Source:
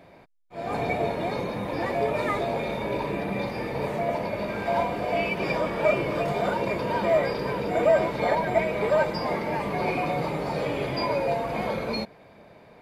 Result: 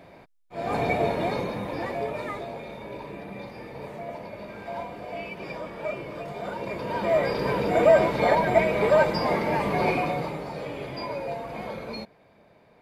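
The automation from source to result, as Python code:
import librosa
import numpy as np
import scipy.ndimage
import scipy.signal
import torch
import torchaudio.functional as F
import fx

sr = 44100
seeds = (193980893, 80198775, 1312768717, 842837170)

y = fx.gain(x, sr, db=fx.line((1.24, 2.0), (2.62, -9.5), (6.31, -9.5), (7.5, 3.0), (9.88, 3.0), (10.51, -6.5)))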